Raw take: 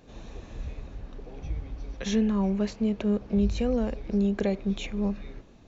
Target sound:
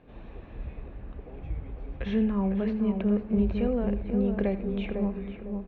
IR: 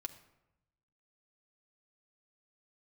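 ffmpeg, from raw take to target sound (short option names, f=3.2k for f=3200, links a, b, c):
-filter_complex "[0:a]lowpass=f=2.8k:w=0.5412,lowpass=f=2.8k:w=1.3066,asplit=2[a][b];[b]adelay=503,lowpass=f=1.2k:p=1,volume=-5dB,asplit=2[c][d];[d]adelay=503,lowpass=f=1.2k:p=1,volume=0.34,asplit=2[e][f];[f]adelay=503,lowpass=f=1.2k:p=1,volume=0.34,asplit=2[g][h];[h]adelay=503,lowpass=f=1.2k:p=1,volume=0.34[i];[a][c][e][g][i]amix=inputs=5:normalize=0,asplit=2[j][k];[1:a]atrim=start_sample=2205,adelay=82[l];[k][l]afir=irnorm=-1:irlink=0,volume=-12dB[m];[j][m]amix=inputs=2:normalize=0,volume=-1.5dB"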